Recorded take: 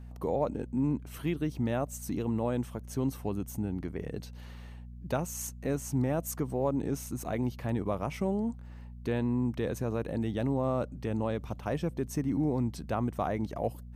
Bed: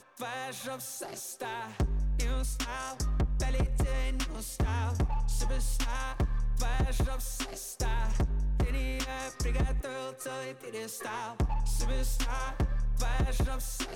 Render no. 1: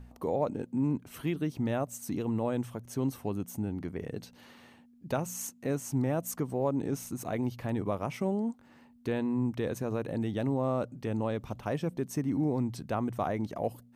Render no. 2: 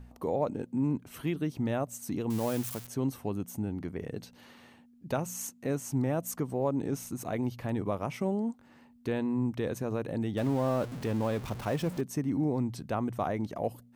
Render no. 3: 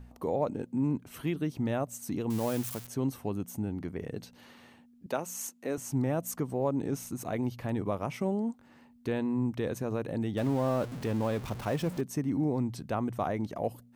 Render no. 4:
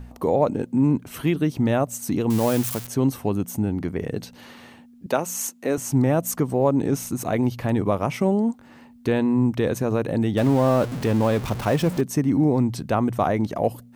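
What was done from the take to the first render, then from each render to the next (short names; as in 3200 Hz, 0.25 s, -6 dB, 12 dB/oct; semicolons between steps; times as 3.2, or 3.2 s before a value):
de-hum 60 Hz, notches 3
2.3–2.87 switching spikes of -27.5 dBFS; 10.37–12.01 zero-crossing step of -38 dBFS
5.06–5.78 HPF 280 Hz
gain +10 dB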